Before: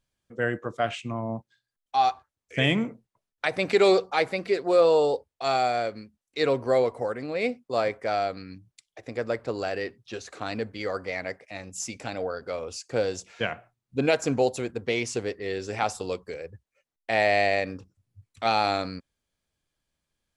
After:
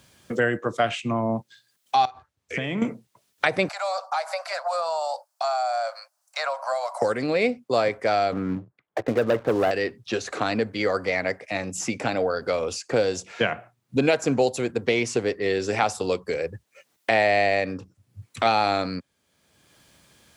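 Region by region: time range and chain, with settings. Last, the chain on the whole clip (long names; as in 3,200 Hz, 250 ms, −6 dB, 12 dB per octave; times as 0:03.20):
0:02.05–0:02.82: high-shelf EQ 7,200 Hz −9 dB + downward compressor 20 to 1, threshold −35 dBFS
0:03.68–0:07.02: Butterworth high-pass 590 Hz 96 dB per octave + flat-topped bell 2,600 Hz −11 dB 1.3 octaves + downward compressor 2.5 to 1, threshold −37 dBFS
0:08.32–0:09.71: low-pass filter 1,500 Hz 24 dB per octave + leveller curve on the samples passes 2
whole clip: high-pass filter 96 Hz; multiband upward and downward compressor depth 70%; level +5 dB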